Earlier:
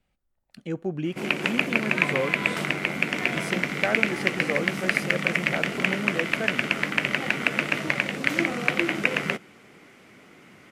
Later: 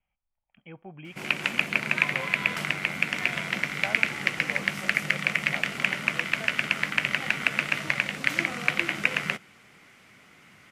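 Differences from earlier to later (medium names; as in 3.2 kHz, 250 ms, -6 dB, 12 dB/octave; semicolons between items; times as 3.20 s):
speech: add rippled Chebyshev low-pass 3.3 kHz, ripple 9 dB; master: add peaking EQ 360 Hz -10.5 dB 1.9 oct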